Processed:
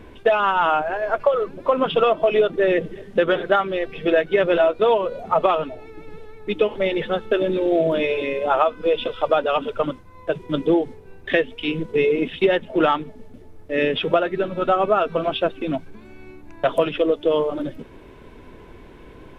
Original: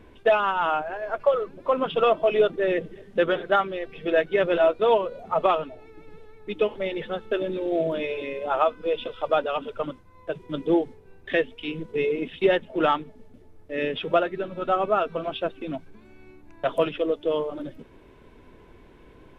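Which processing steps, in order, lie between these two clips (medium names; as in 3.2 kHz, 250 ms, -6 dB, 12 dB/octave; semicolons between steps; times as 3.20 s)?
compression, threshold -21 dBFS, peak gain reduction 7 dB; trim +7.5 dB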